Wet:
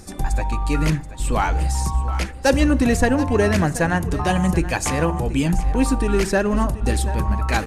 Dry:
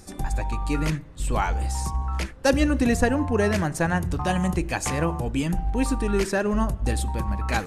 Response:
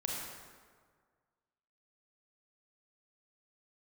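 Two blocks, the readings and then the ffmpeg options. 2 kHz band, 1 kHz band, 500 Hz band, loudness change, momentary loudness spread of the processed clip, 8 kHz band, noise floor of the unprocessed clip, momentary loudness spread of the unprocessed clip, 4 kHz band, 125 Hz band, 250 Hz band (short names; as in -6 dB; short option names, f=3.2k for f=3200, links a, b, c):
+4.0 dB, +4.5 dB, +4.0 dB, +4.5 dB, 6 LU, +4.5 dB, -40 dBFS, 7 LU, +4.0 dB, +5.0 dB, +4.0 dB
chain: -filter_complex "[0:a]asplit=2[a][b];[b]volume=17dB,asoftclip=hard,volume=-17dB,volume=-4dB[c];[a][c]amix=inputs=2:normalize=0,aphaser=in_gain=1:out_gain=1:delay=4.4:decay=0.2:speed=1.1:type=triangular,aecho=1:1:730:0.178"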